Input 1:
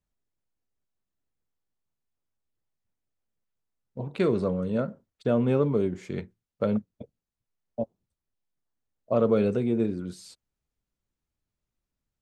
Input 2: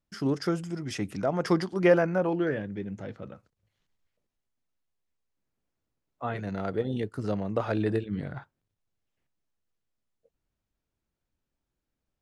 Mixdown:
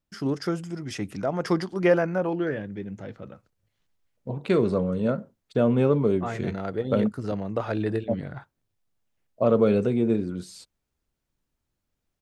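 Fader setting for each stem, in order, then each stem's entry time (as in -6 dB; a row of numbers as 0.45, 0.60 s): +2.5, +0.5 dB; 0.30, 0.00 s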